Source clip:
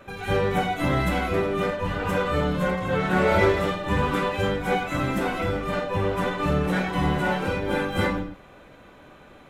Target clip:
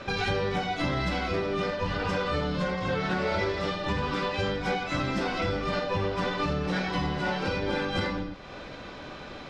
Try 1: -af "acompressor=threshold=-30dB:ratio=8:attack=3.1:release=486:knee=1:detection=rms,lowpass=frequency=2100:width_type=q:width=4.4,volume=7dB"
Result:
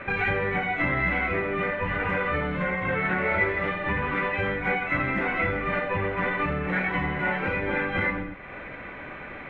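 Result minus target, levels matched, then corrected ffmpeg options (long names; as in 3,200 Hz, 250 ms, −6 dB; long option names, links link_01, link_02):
4,000 Hz band −11.5 dB
-af "acompressor=threshold=-30dB:ratio=8:attack=3.1:release=486:knee=1:detection=rms,lowpass=frequency=5000:width_type=q:width=4.4,volume=7dB"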